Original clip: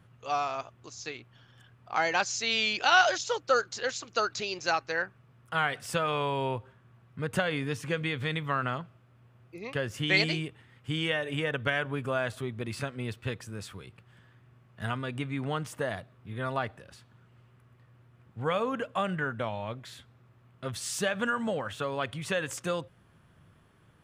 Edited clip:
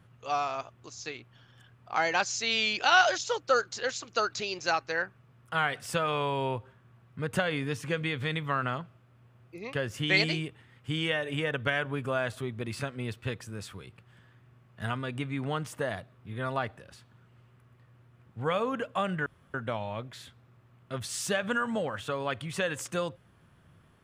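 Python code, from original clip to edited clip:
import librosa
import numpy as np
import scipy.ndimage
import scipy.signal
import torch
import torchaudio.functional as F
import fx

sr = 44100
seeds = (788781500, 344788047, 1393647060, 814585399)

y = fx.edit(x, sr, fx.insert_room_tone(at_s=19.26, length_s=0.28), tone=tone)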